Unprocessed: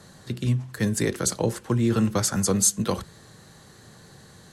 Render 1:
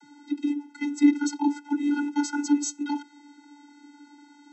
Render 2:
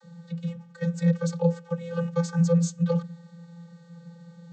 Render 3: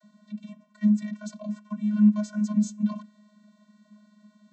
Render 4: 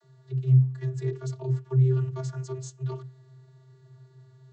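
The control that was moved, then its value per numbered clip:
vocoder, frequency: 290, 170, 210, 130 Hz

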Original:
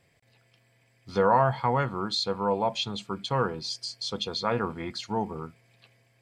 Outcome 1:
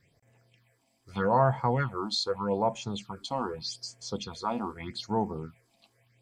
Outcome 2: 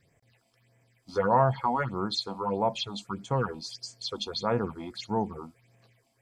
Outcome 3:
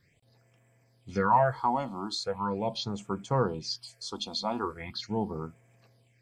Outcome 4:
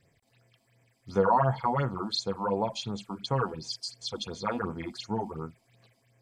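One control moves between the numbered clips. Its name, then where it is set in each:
phaser, rate: 0.82, 1.6, 0.4, 2.8 Hz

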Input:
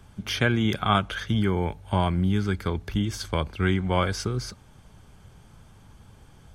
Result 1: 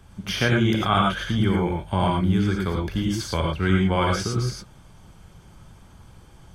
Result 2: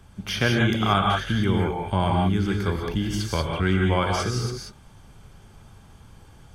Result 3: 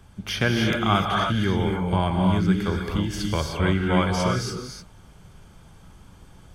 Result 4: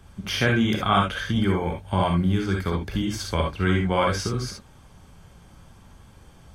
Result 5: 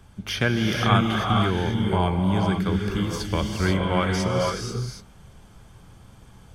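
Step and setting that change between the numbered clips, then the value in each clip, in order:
non-linear reverb, gate: 130, 210, 330, 90, 520 ms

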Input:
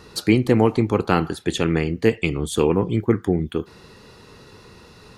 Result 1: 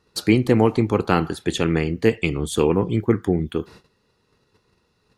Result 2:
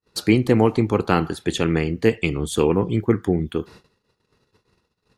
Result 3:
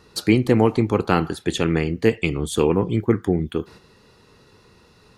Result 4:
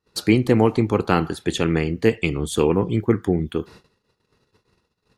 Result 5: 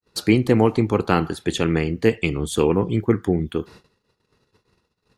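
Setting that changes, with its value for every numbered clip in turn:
gate, range: -20, -47, -7, -35, -60 dB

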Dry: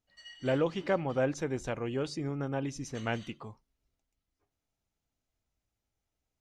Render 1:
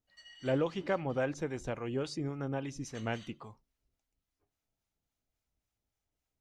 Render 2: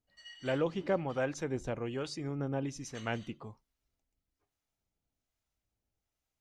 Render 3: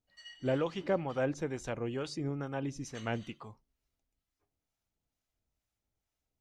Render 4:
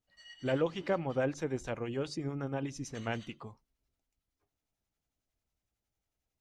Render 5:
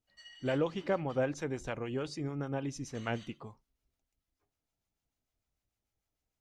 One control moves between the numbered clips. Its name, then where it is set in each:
harmonic tremolo, rate: 3.6, 1.2, 2.2, 11, 6.7 Hz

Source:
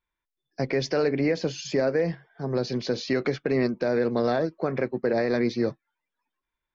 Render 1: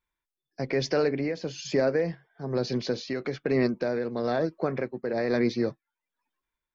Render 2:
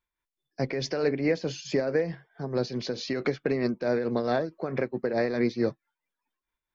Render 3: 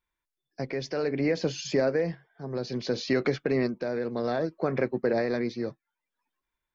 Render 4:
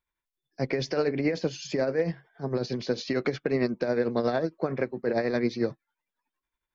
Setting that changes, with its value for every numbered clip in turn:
tremolo, rate: 1.1, 4.6, 0.62, 11 Hz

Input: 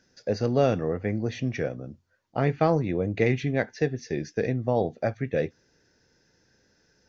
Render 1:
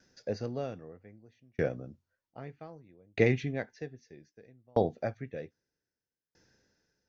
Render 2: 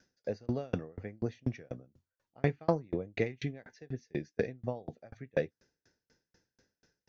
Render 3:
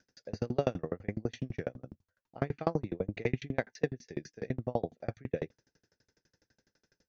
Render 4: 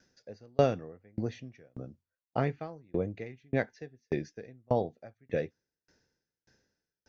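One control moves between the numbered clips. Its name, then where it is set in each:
dB-ramp tremolo, rate: 0.63, 4.1, 12, 1.7 Hz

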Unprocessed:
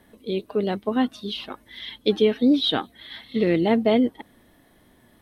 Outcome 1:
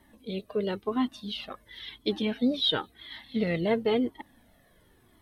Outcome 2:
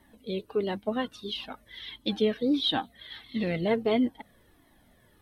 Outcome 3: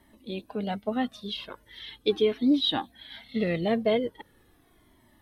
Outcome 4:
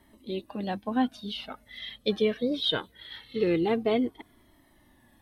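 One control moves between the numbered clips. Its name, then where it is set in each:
cascading flanger, rate: 0.96, 1.5, 0.4, 0.22 Hz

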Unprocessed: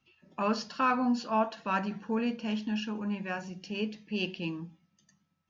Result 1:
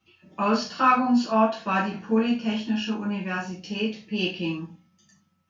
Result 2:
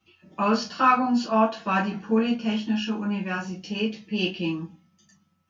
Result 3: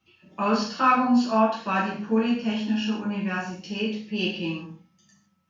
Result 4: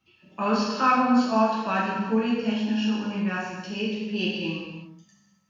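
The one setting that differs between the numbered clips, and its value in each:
non-linear reverb, gate: 120, 80, 190, 410 ms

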